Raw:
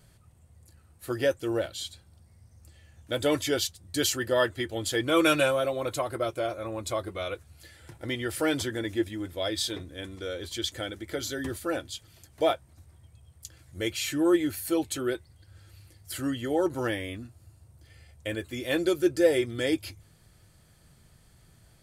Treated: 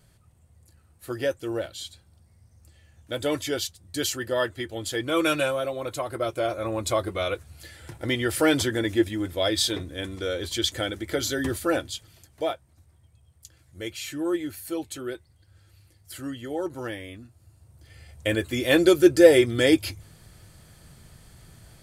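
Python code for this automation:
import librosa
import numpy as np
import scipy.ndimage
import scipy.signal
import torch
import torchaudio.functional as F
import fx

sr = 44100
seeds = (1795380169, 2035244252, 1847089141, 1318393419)

y = fx.gain(x, sr, db=fx.line((5.95, -1.0), (6.67, 6.0), (11.79, 6.0), (12.53, -4.0), (17.25, -4.0), (18.27, 8.0)))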